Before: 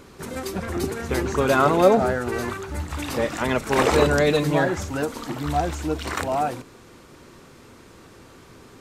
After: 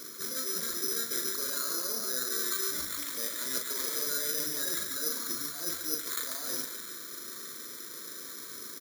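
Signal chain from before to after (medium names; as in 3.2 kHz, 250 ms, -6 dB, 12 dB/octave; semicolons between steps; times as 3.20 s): high-pass 330 Hz 12 dB/octave; peak limiter -14 dBFS, peak gain reduction 9.5 dB; reverse; compression 6:1, threshold -38 dBFS, peak gain reduction 17.5 dB; reverse; static phaser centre 2.9 kHz, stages 6; doubling 39 ms -5 dB; on a send: band-passed feedback delay 142 ms, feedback 64%, band-pass 1.6 kHz, level -4 dB; on the sum: careless resampling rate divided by 8×, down filtered, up zero stuff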